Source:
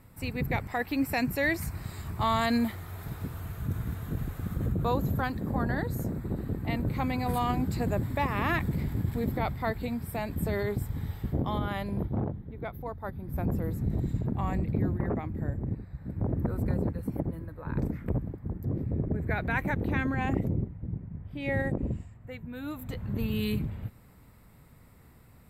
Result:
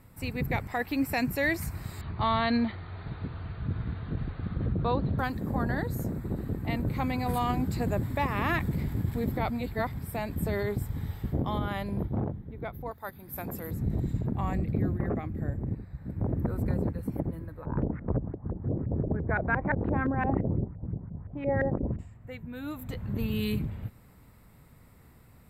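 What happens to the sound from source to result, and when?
2.01–5.19 s: brick-wall FIR low-pass 4.7 kHz
9.50–9.99 s: reverse
12.91–13.71 s: tilt EQ +3.5 dB/octave
14.53–15.51 s: band-stop 930 Hz, Q 7.1
17.65–21.99 s: LFO low-pass saw up 5.8 Hz 500–1700 Hz

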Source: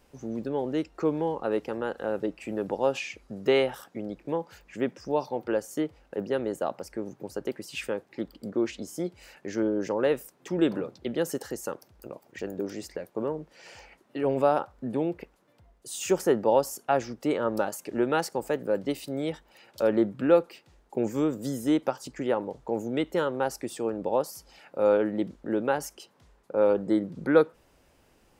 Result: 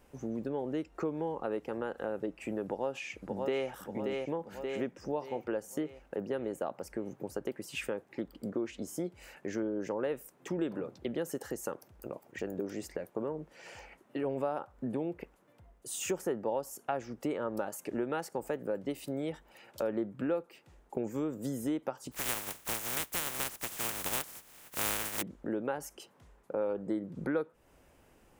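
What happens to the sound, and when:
2.64–3.67 s: echo throw 580 ms, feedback 50%, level -7.5 dB
22.11–25.21 s: spectral contrast reduction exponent 0.11
whole clip: peaking EQ 4.5 kHz -6.5 dB 0.92 oct; compression 3:1, threshold -33 dBFS

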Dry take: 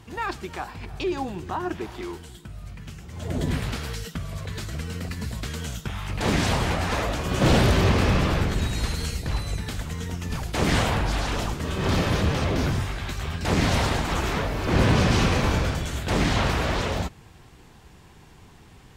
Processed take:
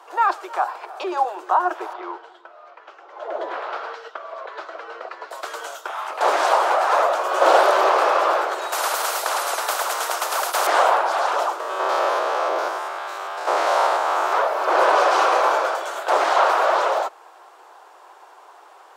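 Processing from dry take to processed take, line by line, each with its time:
1.93–5.31 s: distance through air 220 m
8.72–10.67 s: spectrum-flattening compressor 4:1
11.60–14.33 s: spectrogram pixelated in time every 100 ms
whole clip: steep high-pass 340 Hz 72 dB/octave; high-order bell 900 Hz +13.5 dB; trim -1 dB

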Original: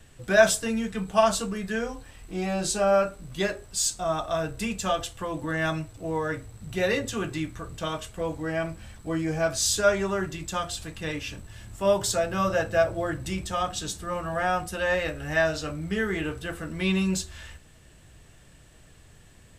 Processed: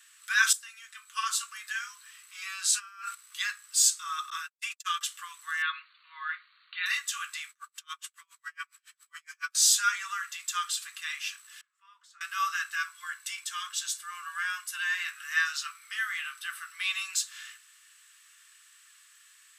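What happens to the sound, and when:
0.53–1.74 s: fade in, from -14 dB
2.71–3.15 s: compressor with a negative ratio -33 dBFS
4.30–5.01 s: gate -30 dBFS, range -56 dB
5.62–6.86 s: brick-wall FIR low-pass 4.6 kHz
7.50–9.55 s: logarithmic tremolo 7.2 Hz, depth 37 dB
11.61–12.21 s: band-pass filter 100 Hz, Q 0.77
12.75–15.13 s: comb of notches 630 Hz
15.63–16.83 s: band-stop 7 kHz, Q 6.5
whole clip: steep high-pass 1.1 kHz 96 dB/octave; treble shelf 5.8 kHz +6 dB

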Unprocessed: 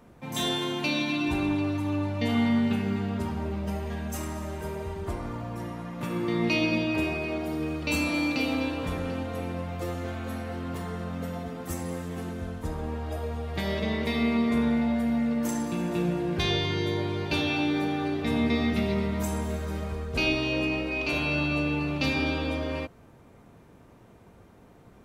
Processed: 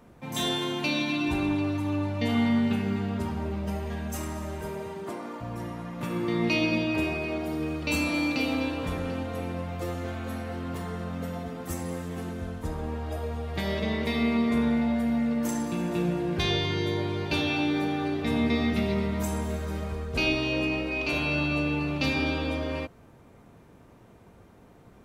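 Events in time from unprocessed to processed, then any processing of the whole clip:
4.65–5.40 s: high-pass 83 Hz -> 280 Hz 24 dB/octave

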